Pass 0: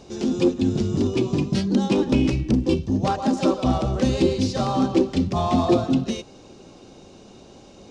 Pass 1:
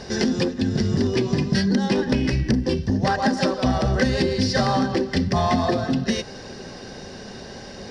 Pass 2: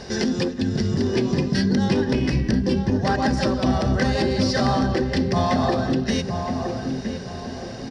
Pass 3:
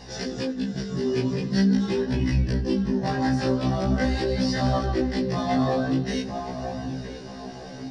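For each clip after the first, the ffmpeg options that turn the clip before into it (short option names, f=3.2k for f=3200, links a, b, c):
-af "acompressor=threshold=-26dB:ratio=6,superequalizer=6b=0.501:11b=3.98:14b=2:15b=0.562,volume=9dB"
-filter_complex "[0:a]asplit=2[a][b];[b]alimiter=limit=-15dB:level=0:latency=1,volume=-2.5dB[c];[a][c]amix=inputs=2:normalize=0,asplit=2[d][e];[e]adelay=967,lowpass=f=1k:p=1,volume=-4dB,asplit=2[f][g];[g]adelay=967,lowpass=f=1k:p=1,volume=0.41,asplit=2[h][i];[i]adelay=967,lowpass=f=1k:p=1,volume=0.41,asplit=2[j][k];[k]adelay=967,lowpass=f=1k:p=1,volume=0.41,asplit=2[l][m];[m]adelay=967,lowpass=f=1k:p=1,volume=0.41[n];[d][f][h][j][l][n]amix=inputs=6:normalize=0,volume=-5dB"
-af "flanger=delay=16.5:depth=6.5:speed=0.44,afftfilt=real='re*1.73*eq(mod(b,3),0)':imag='im*1.73*eq(mod(b,3),0)':win_size=2048:overlap=0.75"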